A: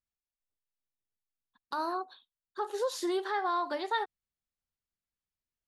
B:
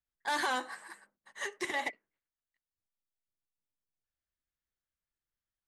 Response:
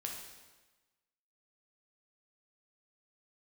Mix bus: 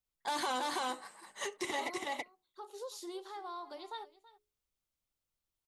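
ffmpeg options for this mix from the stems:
-filter_complex "[0:a]highshelf=f=3800:g=7,bandreject=f=60:t=h:w=6,bandreject=f=120:t=h:w=6,bandreject=f=180:t=h:w=6,bandreject=f=240:t=h:w=6,bandreject=f=300:t=h:w=6,bandreject=f=360:t=h:w=6,bandreject=f=420:t=h:w=6,volume=0.237,asplit=2[s0][s1];[s1]volume=0.119[s2];[1:a]volume=1.33,asplit=2[s3][s4];[s4]volume=0.596[s5];[s2][s5]amix=inputs=2:normalize=0,aecho=0:1:328:1[s6];[s0][s3][s6]amix=inputs=3:normalize=0,equalizer=f=1700:t=o:w=0.41:g=-11.5,alimiter=level_in=1.33:limit=0.0631:level=0:latency=1:release=42,volume=0.75"

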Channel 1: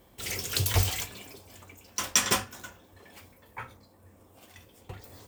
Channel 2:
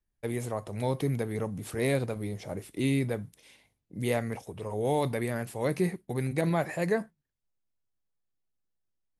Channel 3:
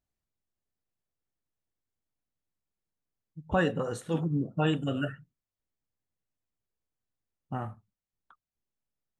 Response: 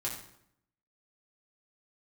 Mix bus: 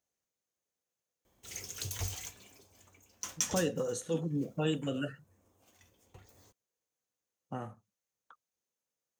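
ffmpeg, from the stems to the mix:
-filter_complex "[0:a]adelay=1250,volume=0.224[s0];[2:a]highpass=f=310:p=1,equalizer=f=500:w=4.3:g=8,volume=1.12[s1];[s0][s1]amix=inputs=2:normalize=0,equalizer=f=6400:w=5.3:g=11.5,acrossover=split=350|3000[s2][s3][s4];[s3]acompressor=threshold=0.00501:ratio=2[s5];[s2][s5][s4]amix=inputs=3:normalize=0"

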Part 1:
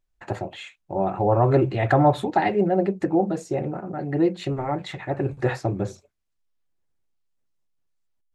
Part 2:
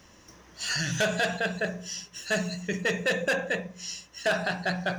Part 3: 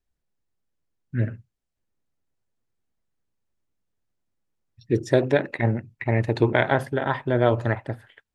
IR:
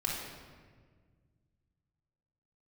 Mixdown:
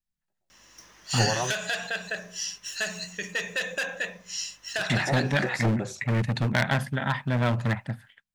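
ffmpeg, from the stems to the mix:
-filter_complex "[0:a]acompressor=threshold=0.0355:ratio=6,volume=0.668[s0];[1:a]aeval=exprs='val(0)+0.00158*(sin(2*PI*50*n/s)+sin(2*PI*2*50*n/s)/2+sin(2*PI*3*50*n/s)/3+sin(2*PI*4*50*n/s)/4+sin(2*PI*5*50*n/s)/5)':c=same,acompressor=threshold=0.0501:ratio=6,adelay=500,volume=0.282[s1];[2:a]lowshelf=f=270:t=q:w=3:g=10.5,asoftclip=type=hard:threshold=0.355,volume=0.251,asplit=2[s2][s3];[s3]apad=whole_len=368002[s4];[s0][s4]sidechaingate=range=0.00251:threshold=0.00251:ratio=16:detection=peak[s5];[s5][s1][s2]amix=inputs=3:normalize=0,equalizer=f=74:w=1.1:g=-5,dynaudnorm=f=190:g=5:m=2.66,tiltshelf=f=810:g=-7"

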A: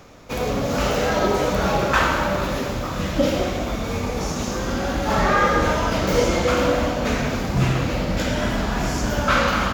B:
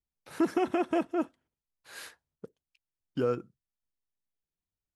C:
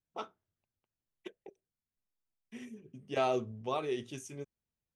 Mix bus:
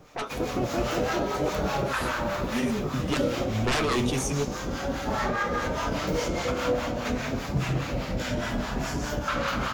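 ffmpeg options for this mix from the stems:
-filter_complex "[0:a]acrossover=split=730[s0][s1];[s0]aeval=exprs='val(0)*(1-0.7/2+0.7/2*cos(2*PI*4.9*n/s))':c=same[s2];[s1]aeval=exprs='val(0)*(1-0.7/2-0.7/2*cos(2*PI*4.9*n/s))':c=same[s3];[s2][s3]amix=inputs=2:normalize=0,alimiter=limit=0.2:level=0:latency=1:release=137,volume=1.12[s4];[1:a]acompressor=threshold=0.0398:ratio=6,volume=1.26,asplit=2[s5][s6];[2:a]aeval=exprs='0.119*sin(PI/2*7.94*val(0)/0.119)':c=same,alimiter=level_in=1.06:limit=0.0631:level=0:latency=1,volume=0.944,volume=1.19[s7];[s6]apad=whole_len=218400[s8];[s7][s8]sidechaincompress=threshold=0.00447:ratio=8:attack=16:release=206[s9];[s5][s9]amix=inputs=2:normalize=0,dynaudnorm=f=100:g=21:m=2.51,alimiter=limit=0.126:level=0:latency=1,volume=1[s10];[s4][s10]amix=inputs=2:normalize=0,flanger=delay=6.4:depth=2.3:regen=65:speed=0.65:shape=triangular"

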